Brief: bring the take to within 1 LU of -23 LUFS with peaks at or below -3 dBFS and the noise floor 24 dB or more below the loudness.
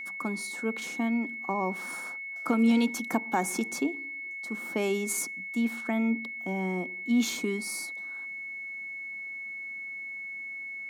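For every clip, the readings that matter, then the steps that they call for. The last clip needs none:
steady tone 2200 Hz; tone level -36 dBFS; loudness -31.0 LUFS; peak -14.0 dBFS; loudness target -23.0 LUFS
-> notch 2200 Hz, Q 30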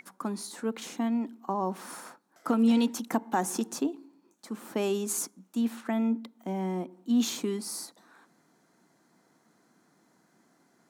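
steady tone none; loudness -30.5 LUFS; peak -14.0 dBFS; loudness target -23.0 LUFS
-> gain +7.5 dB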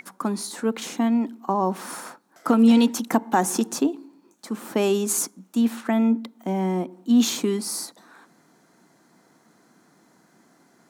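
loudness -23.0 LUFS; peak -6.5 dBFS; noise floor -60 dBFS

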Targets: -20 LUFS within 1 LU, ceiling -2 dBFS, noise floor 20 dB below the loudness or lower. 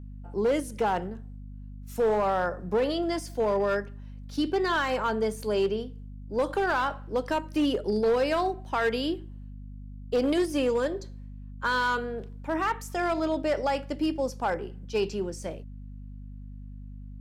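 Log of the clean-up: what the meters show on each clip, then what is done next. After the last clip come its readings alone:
clipped 1.7%; flat tops at -19.5 dBFS; hum 50 Hz; harmonics up to 250 Hz; hum level -39 dBFS; loudness -28.0 LUFS; peak -19.5 dBFS; loudness target -20.0 LUFS
-> clip repair -19.5 dBFS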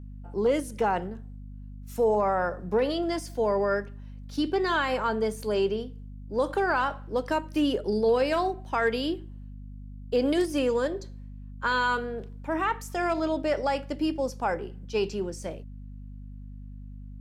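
clipped 0.0%; hum 50 Hz; harmonics up to 250 Hz; hum level -39 dBFS
-> notches 50/100/150/200/250 Hz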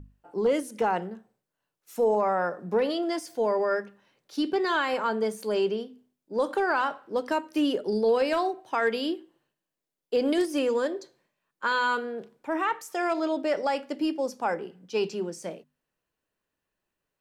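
hum none; loudness -28.0 LUFS; peak -14.0 dBFS; loudness target -20.0 LUFS
-> gain +8 dB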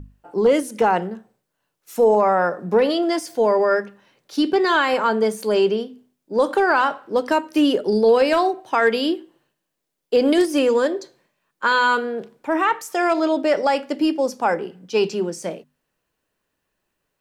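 loudness -20.0 LUFS; peak -6.0 dBFS; noise floor -78 dBFS

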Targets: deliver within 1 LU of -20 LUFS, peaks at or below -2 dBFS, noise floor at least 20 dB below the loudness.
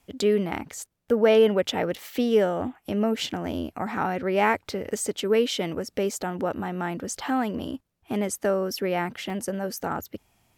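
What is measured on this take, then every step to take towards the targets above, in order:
dropouts 1; longest dropout 1.8 ms; loudness -26.0 LUFS; peak -9.0 dBFS; loudness target -20.0 LUFS
-> interpolate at 9.3, 1.8 ms; gain +6 dB

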